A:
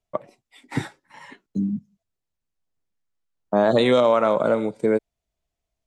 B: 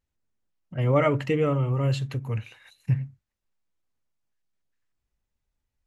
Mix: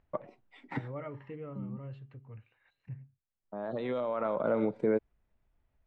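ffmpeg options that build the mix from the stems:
ffmpeg -i stem1.wav -i stem2.wav -filter_complex "[0:a]alimiter=limit=-17dB:level=0:latency=1:release=109,volume=-1.5dB[link_01];[1:a]acompressor=mode=upward:threshold=-31dB:ratio=2.5,highshelf=frequency=6100:gain=-10.5,bandreject=frequency=403.4:width_type=h:width=4,bandreject=frequency=806.8:width_type=h:width=4,bandreject=frequency=1210.2:width_type=h:width=4,bandreject=frequency=1613.6:width_type=h:width=4,bandreject=frequency=2017:width_type=h:width=4,bandreject=frequency=2420.4:width_type=h:width=4,bandreject=frequency=2823.8:width_type=h:width=4,bandreject=frequency=3227.2:width_type=h:width=4,bandreject=frequency=3630.6:width_type=h:width=4,bandreject=frequency=4034:width_type=h:width=4,bandreject=frequency=4437.4:width_type=h:width=4,bandreject=frequency=4840.8:width_type=h:width=4,bandreject=frequency=5244.2:width_type=h:width=4,bandreject=frequency=5647.6:width_type=h:width=4,bandreject=frequency=6051:width_type=h:width=4,bandreject=frequency=6454.4:width_type=h:width=4,bandreject=frequency=6857.8:width_type=h:width=4,bandreject=frequency=7261.2:width_type=h:width=4,bandreject=frequency=7664.6:width_type=h:width=4,bandreject=frequency=8068:width_type=h:width=4,bandreject=frequency=8471.4:width_type=h:width=4,bandreject=frequency=8874.8:width_type=h:width=4,bandreject=frequency=9278.2:width_type=h:width=4,bandreject=frequency=9681.6:width_type=h:width=4,bandreject=frequency=10085:width_type=h:width=4,bandreject=frequency=10488.4:width_type=h:width=4,bandreject=frequency=10891.8:width_type=h:width=4,bandreject=frequency=11295.2:width_type=h:width=4,bandreject=frequency=11698.6:width_type=h:width=4,volume=-19.5dB,asplit=2[link_02][link_03];[link_03]apad=whole_len=258445[link_04];[link_01][link_04]sidechaincompress=threshold=-54dB:ratio=10:attack=20:release=1480[link_05];[link_05][link_02]amix=inputs=2:normalize=0,lowpass=2200" out.wav

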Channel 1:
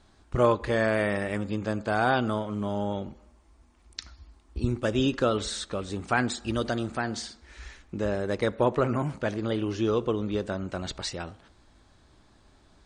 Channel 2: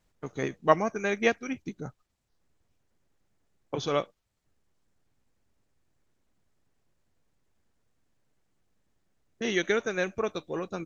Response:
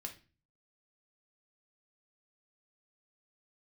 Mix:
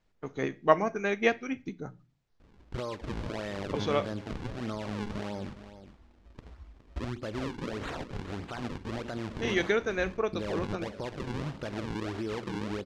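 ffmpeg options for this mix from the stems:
-filter_complex "[0:a]acompressor=threshold=-31dB:ratio=2.5,alimiter=level_in=2.5dB:limit=-24dB:level=0:latency=1:release=75,volume=-2.5dB,acrusher=samples=40:mix=1:aa=0.000001:lfo=1:lforange=64:lforate=1.6,adelay=2400,volume=0.5dB,asplit=2[link_01][link_02];[link_02]volume=-13dB[link_03];[1:a]bandreject=frequency=60:width_type=h:width=6,bandreject=frequency=120:width_type=h:width=6,bandreject=frequency=180:width_type=h:width=6,volume=-3dB,asplit=2[link_04][link_05];[link_05]volume=-5.5dB[link_06];[2:a]atrim=start_sample=2205[link_07];[link_06][link_07]afir=irnorm=-1:irlink=0[link_08];[link_03]aecho=0:1:415:1[link_09];[link_01][link_04][link_08][link_09]amix=inputs=4:normalize=0,lowpass=5000"

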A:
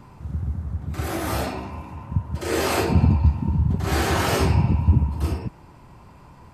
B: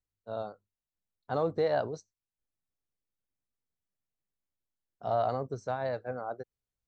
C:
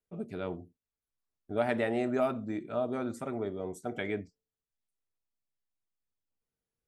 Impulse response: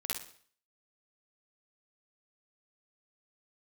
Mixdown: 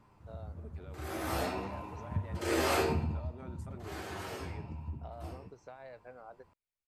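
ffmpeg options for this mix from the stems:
-filter_complex "[0:a]alimiter=limit=-12dB:level=0:latency=1:release=289,lowshelf=frequency=120:gain=4,flanger=delay=9.5:depth=3.6:regen=57:speed=0.51:shape=sinusoidal,volume=-2dB,afade=type=in:start_time=0.95:duration=0.56:silence=0.354813,afade=type=out:start_time=2.81:duration=0.53:silence=0.251189,asplit=2[link_01][link_02];[link_02]volume=-17dB[link_03];[1:a]equalizer=frequency=2300:width_type=o:width=0.43:gain=11.5,acompressor=threshold=-38dB:ratio=6,volume=-8dB[link_04];[2:a]alimiter=level_in=7dB:limit=-24dB:level=0:latency=1,volume=-7dB,adelay=450,volume=-9dB[link_05];[3:a]atrim=start_sample=2205[link_06];[link_03][link_06]afir=irnorm=-1:irlink=0[link_07];[link_01][link_04][link_05][link_07]amix=inputs=4:normalize=0,bass=frequency=250:gain=-7,treble=frequency=4000:gain=-2"

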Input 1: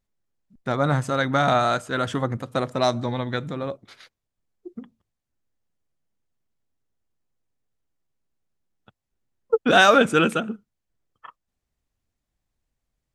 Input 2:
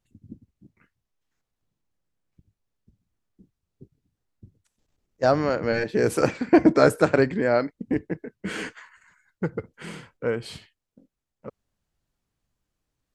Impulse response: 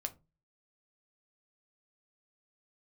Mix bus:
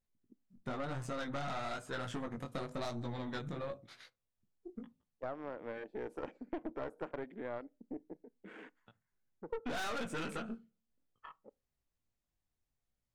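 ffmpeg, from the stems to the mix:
-filter_complex "[0:a]flanger=delay=17:depth=5:speed=1,volume=-6dB,asplit=3[link_01][link_02][link_03];[link_02]volume=-3.5dB[link_04];[1:a]equalizer=frequency=820:width=1.1:gain=5.5,afwtdn=0.02,lowshelf=frequency=170:width_type=q:width=1.5:gain=-13.5,volume=-19.5dB,asplit=2[link_05][link_06];[link_06]volume=-15dB[link_07];[link_03]apad=whole_len=579778[link_08];[link_05][link_08]sidechaincompress=threshold=-28dB:ratio=8:attack=16:release=849[link_09];[2:a]atrim=start_sample=2205[link_10];[link_04][link_07]amix=inputs=2:normalize=0[link_11];[link_11][link_10]afir=irnorm=-1:irlink=0[link_12];[link_01][link_09][link_12]amix=inputs=3:normalize=0,aeval=exprs='(tanh(20*val(0)+0.65)-tanh(0.65))/20':channel_layout=same,acompressor=threshold=-37dB:ratio=4"

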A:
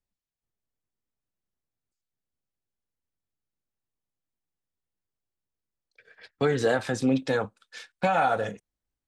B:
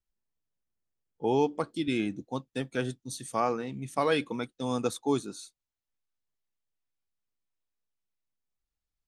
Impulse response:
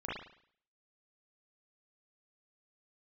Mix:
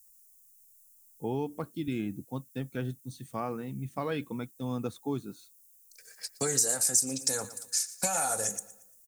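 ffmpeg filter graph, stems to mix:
-filter_complex "[0:a]highshelf=frequency=4700:gain=11,aexciter=amount=14.2:drive=9.4:freq=5400,volume=-5dB,asplit=2[link_01][link_02];[link_02]volume=-19.5dB[link_03];[1:a]bass=frequency=250:gain=10,treble=frequency=4000:gain=-7,volume=-6.5dB[link_04];[link_03]aecho=0:1:116|232|348|464|580:1|0.38|0.144|0.0549|0.0209[link_05];[link_01][link_04][link_05]amix=inputs=3:normalize=0,acompressor=threshold=-28dB:ratio=2.5"

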